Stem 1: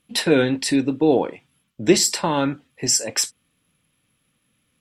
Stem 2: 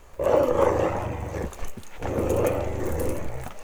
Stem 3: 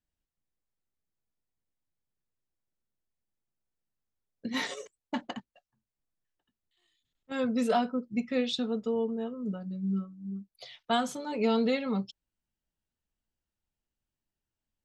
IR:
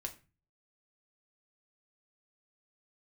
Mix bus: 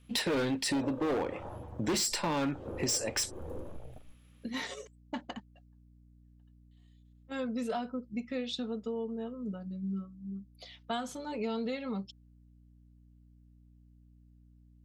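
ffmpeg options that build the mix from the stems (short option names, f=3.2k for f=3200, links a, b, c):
-filter_complex "[0:a]highshelf=f=12k:g=-8,asoftclip=type=hard:threshold=-19.5dB,volume=0.5dB[a];[1:a]afwtdn=0.02,adelay=500,volume=-14dB[b];[2:a]aeval=exprs='val(0)+0.00178*(sin(2*PI*60*n/s)+sin(2*PI*2*60*n/s)/2+sin(2*PI*3*60*n/s)/3+sin(2*PI*4*60*n/s)/4+sin(2*PI*5*60*n/s)/5)':c=same,volume=-3dB[c];[a][b][c]amix=inputs=3:normalize=0,acompressor=threshold=-33dB:ratio=2.5"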